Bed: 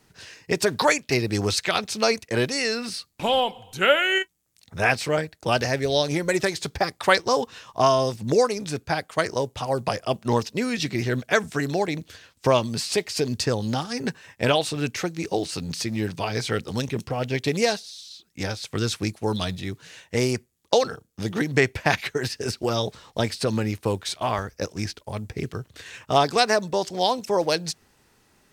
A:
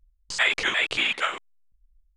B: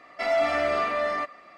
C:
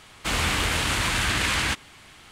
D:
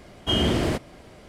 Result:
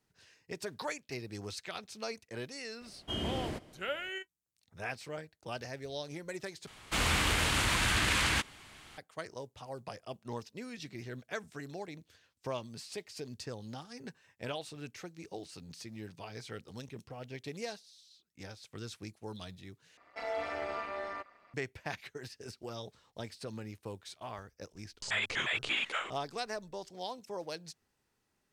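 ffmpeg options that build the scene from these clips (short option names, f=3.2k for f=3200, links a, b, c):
-filter_complex "[0:a]volume=-18.5dB[a];[4:a]aecho=1:1:160:0.0794[b];[2:a]tremolo=f=210:d=0.788[c];[1:a]alimiter=limit=-14.5dB:level=0:latency=1:release=18[d];[a]asplit=3[e][f][g];[e]atrim=end=6.674[h];[3:a]atrim=end=2.31,asetpts=PTS-STARTPTS,volume=-5dB[i];[f]atrim=start=8.976:end=19.974[j];[c]atrim=end=1.57,asetpts=PTS-STARTPTS,volume=-9.5dB[k];[g]atrim=start=21.536[l];[b]atrim=end=1.28,asetpts=PTS-STARTPTS,volume=-14dB,afade=t=in:d=0.004:c=hsin,afade=t=out:st=1.276:d=0.004:c=hsin,adelay=2810[m];[d]atrim=end=2.16,asetpts=PTS-STARTPTS,volume=-8.5dB,afade=t=in:d=0.004:c=hsin,afade=t=out:st=2.156:d=0.004:c=hsin,adelay=1090152S[n];[h][i]acrossfade=d=0.004:c1=hsin:c2=hsin[o];[o][j]acrossfade=d=0.004:c1=hsin:c2=hsin[p];[p][k]acrossfade=d=0.004:c1=hsin:c2=hsin[q];[q][l]acrossfade=d=0.004:c1=hsin:c2=hsin[r];[r][m][n]amix=inputs=3:normalize=0"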